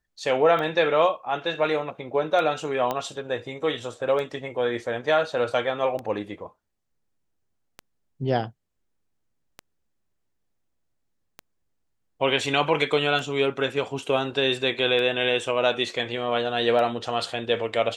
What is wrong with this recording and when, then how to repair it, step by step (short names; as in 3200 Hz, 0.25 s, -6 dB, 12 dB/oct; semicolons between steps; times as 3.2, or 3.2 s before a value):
tick 33 1/3 rpm -19 dBFS
2.91 pop -13 dBFS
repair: de-click